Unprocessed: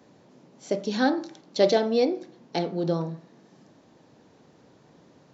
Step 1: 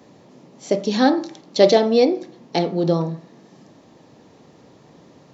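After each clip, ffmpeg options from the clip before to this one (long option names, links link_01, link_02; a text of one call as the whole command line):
ffmpeg -i in.wav -af "bandreject=frequency=1500:width=9.5,volume=7dB" out.wav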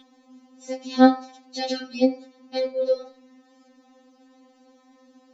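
ffmpeg -i in.wav -af "bandreject=frequency=178.9:width_type=h:width=4,bandreject=frequency=357.8:width_type=h:width=4,bandreject=frequency=536.7:width_type=h:width=4,bandreject=frequency=715.6:width_type=h:width=4,bandreject=frequency=894.5:width_type=h:width=4,bandreject=frequency=1073.4:width_type=h:width=4,bandreject=frequency=1252.3:width_type=h:width=4,bandreject=frequency=1431.2:width_type=h:width=4,bandreject=frequency=1610.1:width_type=h:width=4,bandreject=frequency=1789:width_type=h:width=4,bandreject=frequency=1967.9:width_type=h:width=4,bandreject=frequency=2146.8:width_type=h:width=4,bandreject=frequency=2325.7:width_type=h:width=4,bandreject=frequency=2504.6:width_type=h:width=4,bandreject=frequency=2683.5:width_type=h:width=4,bandreject=frequency=2862.4:width_type=h:width=4,bandreject=frequency=3041.3:width_type=h:width=4,bandreject=frequency=3220.2:width_type=h:width=4,bandreject=frequency=3399.1:width_type=h:width=4,bandreject=frequency=3578:width_type=h:width=4,bandreject=frequency=3756.9:width_type=h:width=4,bandreject=frequency=3935.8:width_type=h:width=4,bandreject=frequency=4114.7:width_type=h:width=4,bandreject=frequency=4293.6:width_type=h:width=4,bandreject=frequency=4472.5:width_type=h:width=4,bandreject=frequency=4651.4:width_type=h:width=4,bandreject=frequency=4830.3:width_type=h:width=4,bandreject=frequency=5009.2:width_type=h:width=4,bandreject=frequency=5188.1:width_type=h:width=4,bandreject=frequency=5367:width_type=h:width=4,bandreject=frequency=5545.9:width_type=h:width=4,aeval=exprs='val(0)+0.0316*sin(2*PI*3500*n/s)':channel_layout=same,afftfilt=real='re*3.46*eq(mod(b,12),0)':imag='im*3.46*eq(mod(b,12),0)':win_size=2048:overlap=0.75,volume=-4.5dB" out.wav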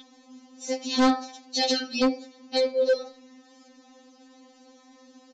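ffmpeg -i in.wav -af "highshelf=frequency=3200:gain=9.5,aresample=16000,asoftclip=type=hard:threshold=-18dB,aresample=44100,volume=1.5dB" out.wav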